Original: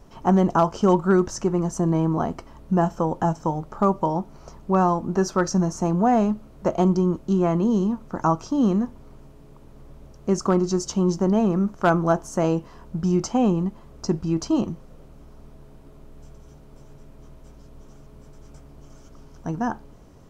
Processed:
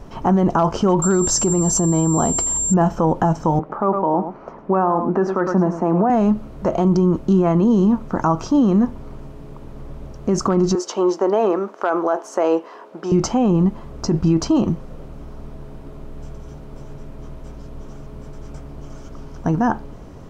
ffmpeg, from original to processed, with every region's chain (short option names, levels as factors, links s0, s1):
-filter_complex "[0:a]asettb=1/sr,asplit=3[s0][s1][s2];[s0]atrim=end=1.024[s3];[s1]atrim=start=1.02:end=2.74,asetpts=PTS-STARTPTS,afade=t=in:d=0.004:c=qsin,afade=t=out:st=1.716:d=0.004:c=qsin,highshelf=f=3000:t=q:w=1.5:g=7,aeval=exprs='val(0)+0.0708*sin(2*PI*7400*n/s)':c=same[s4];[s2]atrim=start=2.736[s5];[s3][s4]acrossfade=d=0.004:c1=hsin:c2=qsin[s6];[s6][s5]acrossfade=d=0.004:c1=qsin:c2=hsin,asettb=1/sr,asplit=3[s7][s8][s9];[s7]atrim=end=3.594[s10];[s8]atrim=start=3.59:end=6.1,asetpts=PTS-STARTPTS,afade=t=in:d=0.004:c=qsin,afade=t=out:st=2.506:d=0.004:c=qsin,acrossover=split=200 2400:gain=0.1 1 0.0794[s11][s12][s13];[s11][s12][s13]amix=inputs=3:normalize=0,aecho=1:1:105:0.224,atrim=end_sample=110691[s14];[s9]atrim=start=6.096[s15];[s10][s14]acrossfade=d=0.004:c1=hsin:c2=qsin[s16];[s16][s15]acrossfade=d=0.004:c1=qsin:c2=hsin,asettb=1/sr,asplit=3[s17][s18][s19];[s17]atrim=end=10.754[s20];[s18]atrim=start=10.75:end=13.12,asetpts=PTS-STARTPTS,afade=t=in:d=0.004:c=qsin,afade=t=out:st=2.366:d=0.004:c=qsin,highpass=f=370:w=0.5412,highpass=f=370:w=1.3066,highshelf=f=4900:g=-9[s21];[s19]atrim=start=13.116[s22];[s20][s21]acrossfade=d=0.004:c1=hsin:c2=qsin[s23];[s23][s22]acrossfade=d=0.004:c1=qsin:c2=hsin,highshelf=f=4900:g=-9,alimiter=level_in=8.41:limit=0.891:release=50:level=0:latency=1,volume=0.422"